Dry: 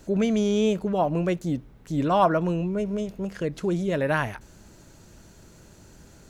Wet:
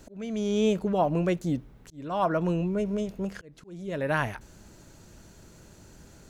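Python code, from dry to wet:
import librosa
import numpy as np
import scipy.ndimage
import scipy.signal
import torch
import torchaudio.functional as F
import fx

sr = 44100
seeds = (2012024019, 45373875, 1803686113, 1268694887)

y = fx.auto_swell(x, sr, attack_ms=591.0)
y = y * librosa.db_to_amplitude(-1.0)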